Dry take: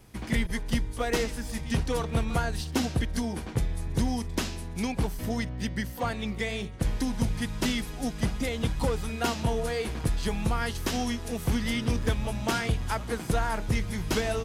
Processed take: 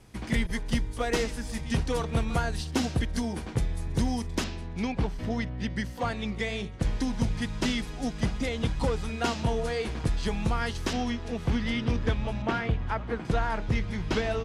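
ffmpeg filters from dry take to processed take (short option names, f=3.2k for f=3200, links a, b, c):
-af "asetnsamples=n=441:p=0,asendcmd='4.44 lowpass f 4200;5.7 lowpass f 7200;10.93 lowpass f 4100;12.42 lowpass f 2400;13.25 lowpass f 4200',lowpass=10k"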